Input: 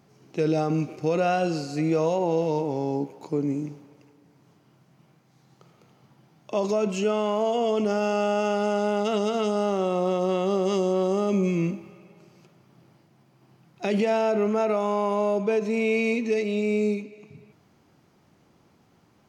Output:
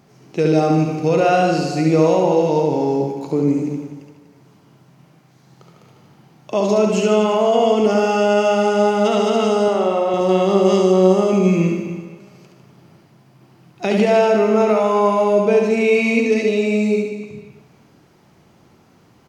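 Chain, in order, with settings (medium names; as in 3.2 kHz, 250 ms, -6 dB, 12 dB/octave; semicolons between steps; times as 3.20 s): 9.68–10.14 s: tone controls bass -15 dB, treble -10 dB; reverse bouncing-ball echo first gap 70 ms, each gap 1.15×, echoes 5; trim +6.5 dB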